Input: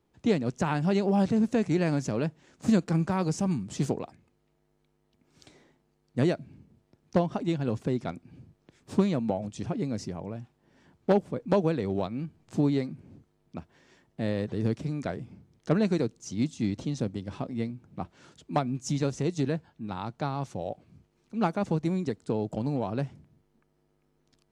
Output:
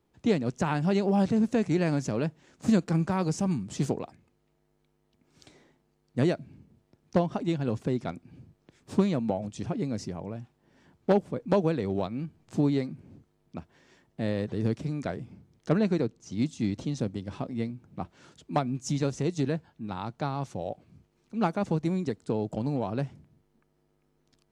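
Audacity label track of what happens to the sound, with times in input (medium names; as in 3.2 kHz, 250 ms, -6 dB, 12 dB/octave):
15.780000	16.310000	low-pass 4.9 kHz -> 2.6 kHz 6 dB/octave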